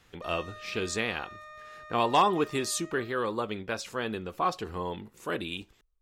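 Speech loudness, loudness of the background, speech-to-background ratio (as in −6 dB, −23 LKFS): −31.0 LKFS, −47.0 LKFS, 16.0 dB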